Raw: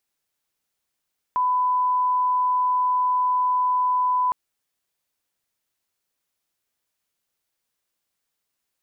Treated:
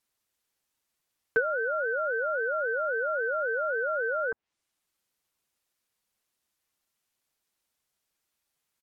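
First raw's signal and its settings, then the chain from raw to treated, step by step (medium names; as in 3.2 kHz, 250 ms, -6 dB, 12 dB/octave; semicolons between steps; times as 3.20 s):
line-up tone -18 dBFS 2.96 s
low-pass that closes with the level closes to 590 Hz, closed at -19.5 dBFS; comb 6.9 ms, depth 85%; ring modulator with a swept carrier 460 Hz, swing 20%, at 3.7 Hz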